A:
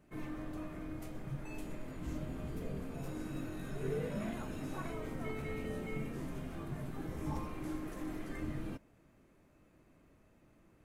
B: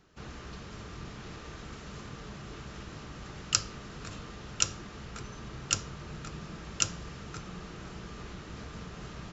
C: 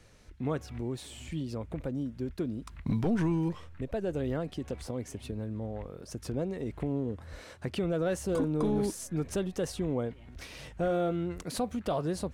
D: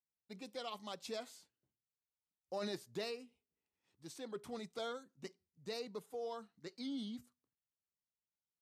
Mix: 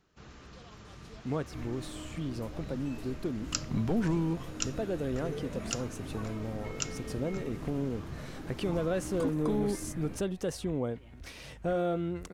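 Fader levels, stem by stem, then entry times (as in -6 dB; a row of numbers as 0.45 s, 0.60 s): -1.5 dB, -7.0 dB, -1.0 dB, -13.0 dB; 1.40 s, 0.00 s, 0.85 s, 0.00 s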